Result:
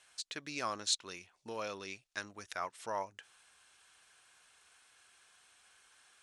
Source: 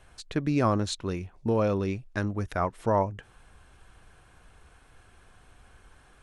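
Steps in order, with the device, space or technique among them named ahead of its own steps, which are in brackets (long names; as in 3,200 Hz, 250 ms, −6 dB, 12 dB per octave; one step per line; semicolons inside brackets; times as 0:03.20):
piezo pickup straight into a mixer (low-pass filter 6,900 Hz 12 dB per octave; first difference)
level +7 dB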